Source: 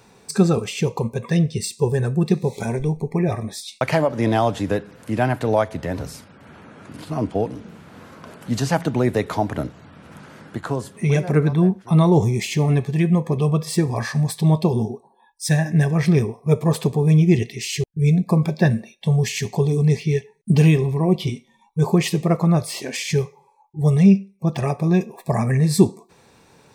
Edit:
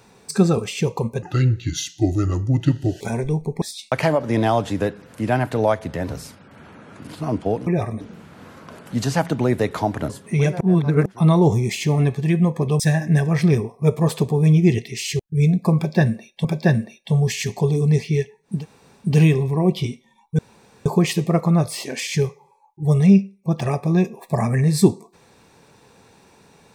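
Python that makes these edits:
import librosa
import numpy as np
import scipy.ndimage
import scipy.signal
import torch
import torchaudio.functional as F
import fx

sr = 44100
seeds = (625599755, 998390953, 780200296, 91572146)

y = fx.edit(x, sr, fx.speed_span(start_s=1.22, length_s=1.34, speed=0.75),
    fx.move(start_s=3.17, length_s=0.34, to_s=7.56),
    fx.cut(start_s=9.65, length_s=1.15),
    fx.reverse_span(start_s=11.31, length_s=0.45),
    fx.cut(start_s=13.5, length_s=1.94),
    fx.repeat(start_s=18.41, length_s=0.68, count=2),
    fx.insert_room_tone(at_s=20.5, length_s=0.53, crossfade_s=0.24),
    fx.insert_room_tone(at_s=21.82, length_s=0.47), tone=tone)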